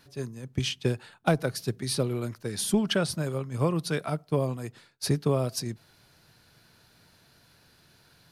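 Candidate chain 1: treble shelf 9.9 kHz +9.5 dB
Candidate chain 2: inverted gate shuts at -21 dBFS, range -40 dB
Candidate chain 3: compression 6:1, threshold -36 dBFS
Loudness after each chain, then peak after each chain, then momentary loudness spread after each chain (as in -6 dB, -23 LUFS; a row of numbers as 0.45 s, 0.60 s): -28.5 LUFS, -41.0 LUFS, -40.5 LUFS; -12.0 dBFS, -17.0 dBFS, -21.5 dBFS; 10 LU, 22 LU, 20 LU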